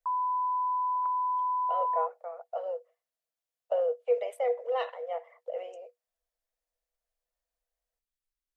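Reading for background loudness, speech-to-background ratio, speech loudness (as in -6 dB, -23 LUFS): -29.5 LUFS, -4.0 dB, -33.5 LUFS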